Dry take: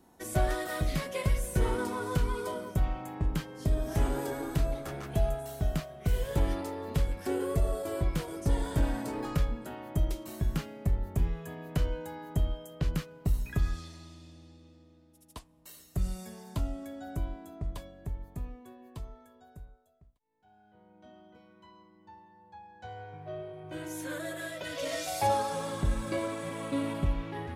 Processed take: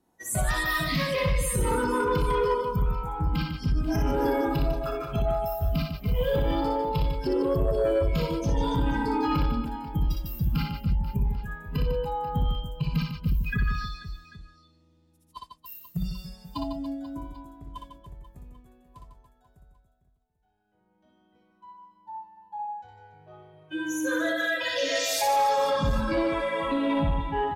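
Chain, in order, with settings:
noise reduction from a noise print of the clip's start 23 dB
brickwall limiter −31.5 dBFS, peak gain reduction 14 dB
on a send: reverse bouncing-ball delay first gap 60 ms, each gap 1.5×, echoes 5
on the sum: sine wavefolder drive 9 dB, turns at −17.5 dBFS
0:14.41–0:15.37: multiband upward and downward compressor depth 40%

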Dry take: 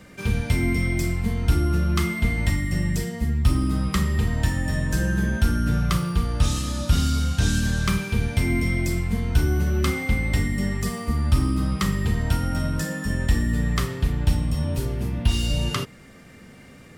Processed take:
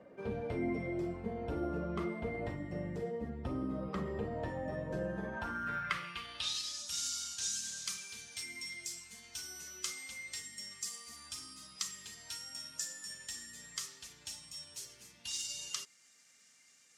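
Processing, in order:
spectral magnitudes quantised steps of 15 dB
band-pass filter sweep 540 Hz → 6,500 Hz, 0:05.01–0:06.88
level +1 dB

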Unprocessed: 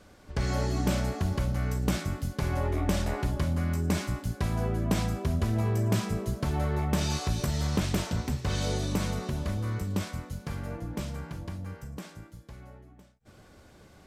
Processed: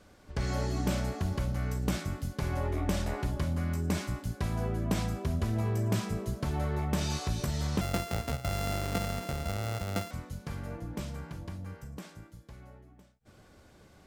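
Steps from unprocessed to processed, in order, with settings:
0:07.81–0:10.11: samples sorted by size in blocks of 64 samples
level −3 dB

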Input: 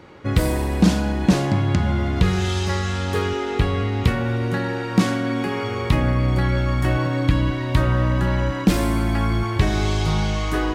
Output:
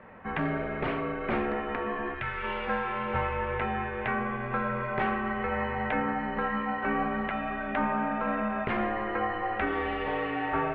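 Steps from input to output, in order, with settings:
gain on a spectral selection 0:02.14–0:02.43, 480–1,500 Hz −9 dB
single-sideband voice off tune −340 Hz 550–2,700 Hz

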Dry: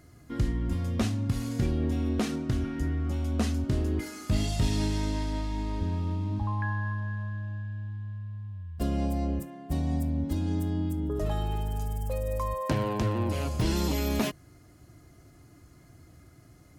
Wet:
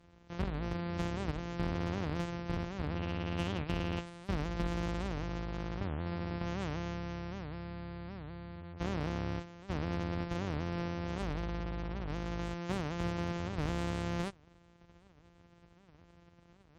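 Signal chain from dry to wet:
samples sorted by size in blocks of 256 samples
gate on every frequency bin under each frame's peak −30 dB strong
0:02.97–0:04.01: parametric band 2,800 Hz +9 dB 0.38 octaves
asymmetric clip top −23.5 dBFS
wow of a warped record 78 rpm, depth 250 cents
level −7.5 dB

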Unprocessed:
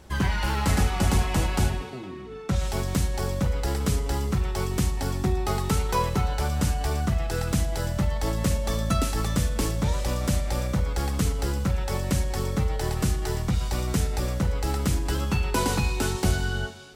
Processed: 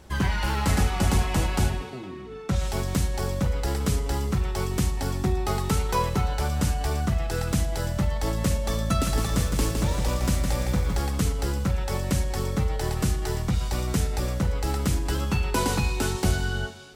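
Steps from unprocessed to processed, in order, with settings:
0:08.84–0:11.00: feedback echo at a low word length 161 ms, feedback 35%, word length 8 bits, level −5 dB

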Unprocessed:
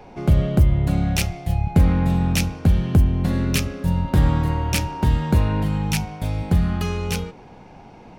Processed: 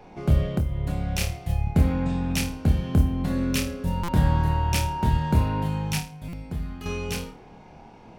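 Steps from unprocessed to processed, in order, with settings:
0:01.82–0:02.30: Chebyshev low-pass filter 8,500 Hz, order 6
0:05.99–0:06.86: tuned comb filter 51 Hz, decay 0.35 s, harmonics odd, mix 80%
on a send: flutter between parallel walls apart 4.6 metres, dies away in 0.31 s
0:00.47–0:01.21: on the sum: downward compressor 6 to 1, threshold −16 dBFS, peak gain reduction 8.5 dB
buffer that repeats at 0:04.03/0:06.28, samples 256, times 8
level −5 dB

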